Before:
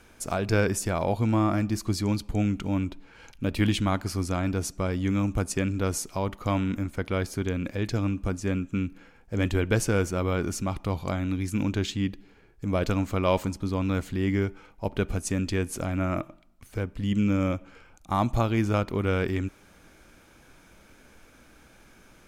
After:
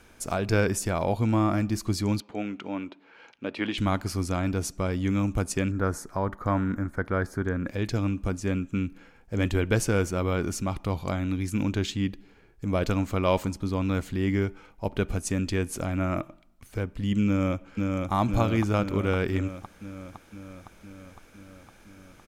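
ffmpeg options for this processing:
-filter_complex "[0:a]asettb=1/sr,asplit=3[a][b][c];[a]atrim=end=2.204[d];[b]atrim=start=2.2:end=3.78,asetpts=PTS-STARTPTS,afade=t=in:d=0.004:c=qsin,afade=t=out:st=1.576:d=0.004:c=qsin,highpass=330,lowpass=3.5k[e];[c]atrim=start=3.776[f];[d][e]acrossfade=d=0.004:c1=hsin:c2=qsin[g];[g][f]acrossfade=d=0.004:c1=qsin:c2=hsin,asettb=1/sr,asplit=3[h][i][j];[h]atrim=end=5.714[k];[i]atrim=start=5.71:end=7.68,asetpts=PTS-STARTPTS,afade=t=in:d=0.004:c=qsin,afade=t=out:st=1.966:d=0.004:c=qsin,highshelf=f=2.1k:t=q:w=3:g=-8[l];[j]atrim=start=7.676[m];[k][l]acrossfade=d=0.004:c1=hsin:c2=qsin[n];[n][m]acrossfade=d=0.004:c1=qsin:c2=hsin,asplit=2[o][p];[p]afade=t=in:st=17.26:d=0.01,afade=t=out:st=18.12:d=0.01,aecho=0:1:510|1020|1530|2040|2550|3060|3570|4080|4590|5100|5610|6120:0.707946|0.495562|0.346893|0.242825|0.169978|0.118984|0.0832891|0.0583024|0.0408117|0.0285682|0.0199977|0.0139984[q];[o][q]amix=inputs=2:normalize=0"

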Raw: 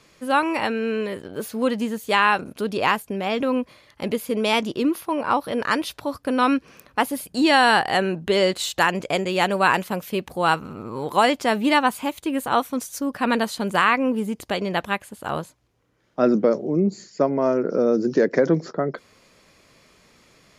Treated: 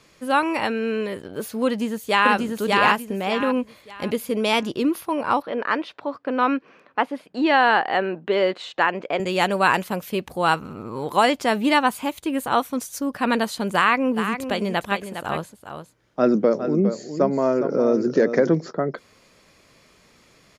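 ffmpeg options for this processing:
-filter_complex "[0:a]asplit=2[a][b];[b]afade=t=in:st=1.66:d=0.01,afade=t=out:st=2.33:d=0.01,aecho=0:1:590|1180|1770|2360:0.891251|0.267375|0.0802126|0.0240638[c];[a][c]amix=inputs=2:normalize=0,asettb=1/sr,asplit=3[d][e][f];[d]atrim=end=5.424[g];[e]atrim=start=5.42:end=9.2,asetpts=PTS-STARTPTS,afade=t=in:d=0.004:c=qsin,afade=t=out:st=3.776:d=0.004:c=qsin,highpass=270,lowpass=2.5k[h];[f]atrim=start=9.196[i];[g][h]acrossfade=d=0.004:c1=hsin:c2=qsin[j];[j][i]acrossfade=d=0.004:c1=qsin:c2=hsin,asplit=3[k][l][m];[k]afade=t=out:st=14.16:d=0.02[n];[l]aecho=1:1:409:0.355,afade=t=in:st=14.16:d=0.02,afade=t=out:st=18.54:d=0.02[o];[m]afade=t=in:st=18.54:d=0.02[p];[n][o][p]amix=inputs=3:normalize=0"

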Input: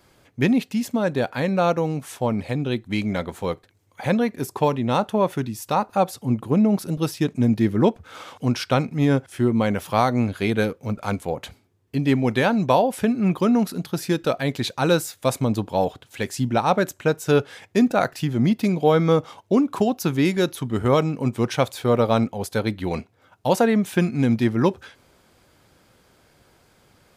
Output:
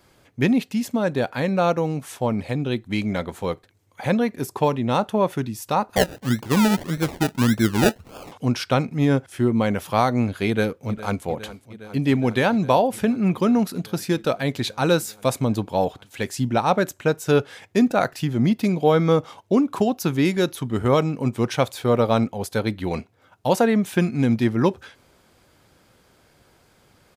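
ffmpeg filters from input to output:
-filter_complex "[0:a]asettb=1/sr,asplit=3[a][b][c];[a]atrim=end=5.964[d];[b]atrim=start=5.96:end=8.32,asetpts=PTS-STARTPTS,afade=t=in:d=0.004:c=qsin,afade=t=out:st=2.356:d=0.004:c=qsin,acrusher=samples=32:mix=1:aa=0.000001:lfo=1:lforange=19.2:lforate=1.7[e];[c]atrim=start=8.316[f];[d][e]acrossfade=d=0.004:c1=hsin:c2=qsin[g];[g][f]acrossfade=d=0.004:c1=qsin:c2=hsin,asplit=2[h][i];[i]afade=t=in:st=10.47:d=0.01,afade=t=out:st=11.24:d=0.01,aecho=0:1:410|820|1230|1640|2050|2460|2870|3280|3690|4100|4510|4920:0.149624|0.12718|0.108103|0.0918876|0.0781044|0.0663888|0.0564305|0.0479659|0.040771|0.0346554|0.0294571|0.0250385[j];[h][j]amix=inputs=2:normalize=0"

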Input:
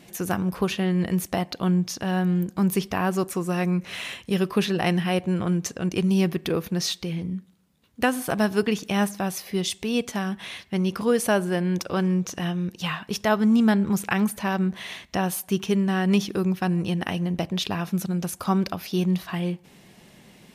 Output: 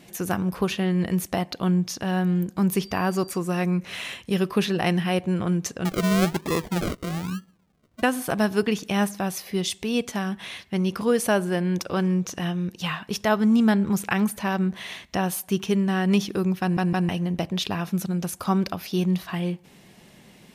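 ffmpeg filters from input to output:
-filter_complex "[0:a]asettb=1/sr,asplit=3[a][b][c];[a]atrim=end=2.834[d];[b]atrim=start=2.83:end=3.38,asetpts=PTS-STARTPTS,afade=t=in:d=0.004:c=qsin,afade=t=out:st=0.546:d=0.004:c=qsin,aeval=exprs='val(0)+0.00501*sin(2*PI*4700*n/s)':c=same[e];[c]atrim=start=3.376[f];[d][e]acrossfade=d=0.004:c1=hsin:c2=qsin[g];[g][f]acrossfade=d=0.004:c1=qsin:c2=hsin,asettb=1/sr,asplit=3[h][i][j];[h]atrim=end=5.854[k];[i]atrim=start=5.85:end=8.03,asetpts=PTS-STARTPTS,afade=t=in:d=0.004:c=qsin,afade=t=out:st=2.176:d=0.004:c=qsin,acrusher=samples=41:mix=1:aa=0.000001:lfo=1:lforange=24.6:lforate=1.1[l];[j]atrim=start=8.026[m];[k][l]acrossfade=d=0.004:c1=hsin:c2=qsin[n];[n][m]acrossfade=d=0.004:c1=qsin:c2=hsin,asplit=4[o][p][q][r];[o]atrim=end=16.772[s];[p]atrim=start=16.608:end=16.772[t];[q]atrim=start=16.608:end=16.772[u];[r]atrim=start=17.088[v];[s][t]acrossfade=d=0.004:c1=hsin:c2=hsin[w];[w][u]acrossfade=d=0.004:c1=hsin:c2=hsin[x];[x][v]acrossfade=d=0.004:c1=hsin:c2=hsin"

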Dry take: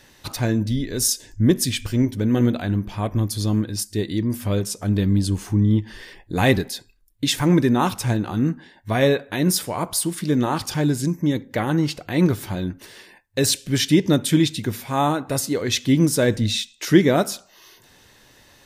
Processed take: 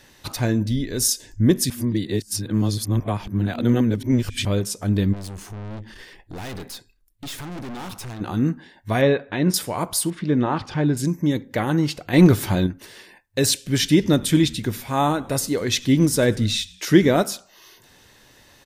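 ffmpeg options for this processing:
-filter_complex "[0:a]asplit=3[a][b][c];[a]afade=t=out:st=5.12:d=0.02[d];[b]aeval=exprs='(tanh(39.8*val(0)+0.55)-tanh(0.55))/39.8':c=same,afade=t=in:st=5.12:d=0.02,afade=t=out:st=8.2:d=0.02[e];[c]afade=t=in:st=8.2:d=0.02[f];[d][e][f]amix=inputs=3:normalize=0,asettb=1/sr,asplit=3[g][h][i];[g]atrim=end=9.014[j];[h]atrim=start=9.01:end=9.54,asetpts=PTS-STARTPTS,afade=t=in:d=0.004:c=qsin,afade=t=out:st=0.526:d=0.004:c=qsin,lowpass=3.2k[k];[i]atrim=start=9.536[l];[j][k]acrossfade=d=0.004:c1=hsin:c2=qsin[m];[m][l]acrossfade=d=0.004:c1=qsin:c2=hsin,asettb=1/sr,asplit=3[n][o][p];[n]atrim=end=10.104[q];[o]atrim=start=10.1:end=10.97,asetpts=PTS-STARTPTS,afade=t=in:d=0.004:c=qsin,afade=t=out:st=0.866:d=0.004:c=qsin,lowpass=2.8k[r];[p]atrim=start=10.966[s];[q][r]acrossfade=d=0.004:c1=hsin:c2=qsin[t];[t][s]acrossfade=d=0.004:c1=qsin:c2=hsin,asettb=1/sr,asplit=3[u][v][w];[u]atrim=end=12.134[x];[v]atrim=start=12.13:end=12.67,asetpts=PTS-STARTPTS,afade=t=in:d=0.004:c=qsin,afade=t=out:st=0.536:d=0.004:c=qsin,acontrast=61[y];[w]atrim=start=12.666[z];[x][y]acrossfade=d=0.004:c1=hsin:c2=qsin[aa];[aa][z]acrossfade=d=0.004:c1=qsin:c2=hsin,asplit=3[ab][ac][ad];[ab]afade=t=out:st=13.78:d=0.02[ae];[ac]asplit=4[af][ag][ah][ai];[ag]adelay=97,afreqshift=-96,volume=-23.5dB[aj];[ah]adelay=194,afreqshift=-192,volume=-29.3dB[ak];[ai]adelay=291,afreqshift=-288,volume=-35.2dB[al];[af][aj][ak][al]amix=inputs=4:normalize=0,afade=t=in:st=13.78:d=0.02,afade=t=out:st=17.22:d=0.02[am];[ad]afade=t=in:st=17.22:d=0.02[an];[ae][am][an]amix=inputs=3:normalize=0,asplit=3[ao][ap][aq];[ao]atrim=end=1.702[ar];[ap]atrim=start=1.698:end=4.452,asetpts=PTS-STARTPTS,areverse[as];[aq]atrim=start=4.448[at];[ar][as]acrossfade=d=0.004:c1=hsin:c2=hsin[au];[au][at]acrossfade=d=0.004:c1=hsin:c2=hsin"

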